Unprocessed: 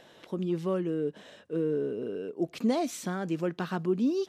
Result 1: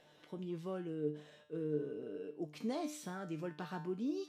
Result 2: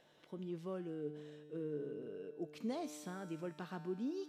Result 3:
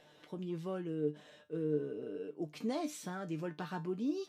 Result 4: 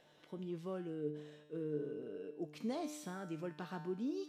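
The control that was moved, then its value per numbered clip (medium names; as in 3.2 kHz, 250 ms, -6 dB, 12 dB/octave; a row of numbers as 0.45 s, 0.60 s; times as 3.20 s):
feedback comb, decay: 0.43 s, 2.2 s, 0.19 s, 0.9 s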